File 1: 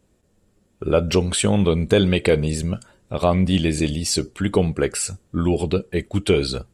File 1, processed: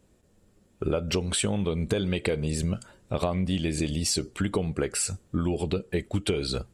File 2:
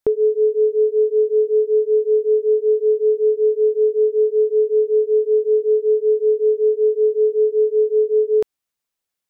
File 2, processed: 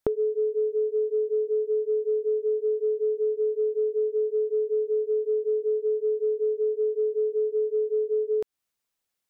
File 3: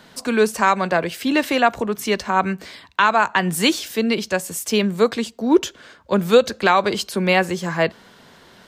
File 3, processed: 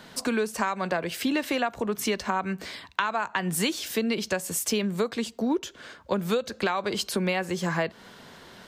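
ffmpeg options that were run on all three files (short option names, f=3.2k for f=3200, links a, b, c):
-af "acompressor=threshold=-23dB:ratio=10"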